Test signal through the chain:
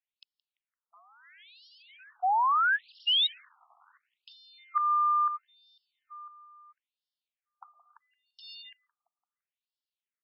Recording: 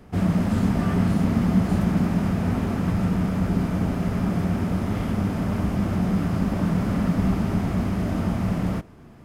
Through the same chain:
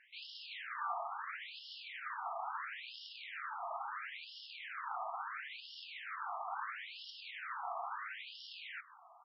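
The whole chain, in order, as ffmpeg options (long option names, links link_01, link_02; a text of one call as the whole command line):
ffmpeg -i in.wav -filter_complex "[0:a]lowshelf=frequency=480:gain=-3.5,acompressor=threshold=-21dB:ratio=12,acrusher=bits=5:mode=log:mix=0:aa=0.000001,asplit=2[link_01][link_02];[link_02]adelay=170,lowpass=frequency=3700:poles=1,volume=-21dB,asplit=2[link_03][link_04];[link_04]adelay=170,lowpass=frequency=3700:poles=1,volume=0.53,asplit=2[link_05][link_06];[link_06]adelay=170,lowpass=frequency=3700:poles=1,volume=0.53,asplit=2[link_07][link_08];[link_08]adelay=170,lowpass=frequency=3700:poles=1,volume=0.53[link_09];[link_01][link_03][link_05][link_07][link_09]amix=inputs=5:normalize=0,afftfilt=real='re*between(b*sr/1024,910*pow(4000/910,0.5+0.5*sin(2*PI*0.74*pts/sr))/1.41,910*pow(4000/910,0.5+0.5*sin(2*PI*0.74*pts/sr))*1.41)':imag='im*between(b*sr/1024,910*pow(4000/910,0.5+0.5*sin(2*PI*0.74*pts/sr))/1.41,910*pow(4000/910,0.5+0.5*sin(2*PI*0.74*pts/sr))*1.41)':win_size=1024:overlap=0.75" out.wav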